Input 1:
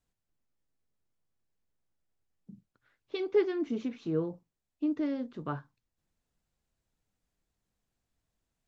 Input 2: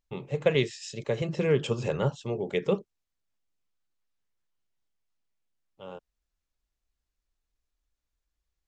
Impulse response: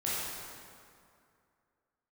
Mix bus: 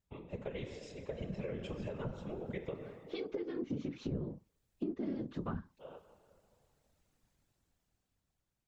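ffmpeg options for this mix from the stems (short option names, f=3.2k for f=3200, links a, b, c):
-filter_complex "[0:a]dynaudnorm=f=330:g=9:m=12.5dB,volume=0.5dB[a];[1:a]highshelf=f=4.7k:g=-12,alimiter=limit=-16dB:level=0:latency=1:release=186,flanger=delay=0.5:depth=8.7:regen=50:speed=0.78:shape=sinusoidal,volume=-1.5dB,asplit=2[b][c];[c]volume=-12dB[d];[2:a]atrim=start_sample=2205[e];[d][e]afir=irnorm=-1:irlink=0[f];[a][b][f]amix=inputs=3:normalize=0,acrossover=split=210[g][h];[h]acompressor=threshold=-30dB:ratio=6[i];[g][i]amix=inputs=2:normalize=0,afftfilt=real='hypot(re,im)*cos(2*PI*random(0))':imag='hypot(re,im)*sin(2*PI*random(1))':win_size=512:overlap=0.75,acompressor=threshold=-37dB:ratio=2.5"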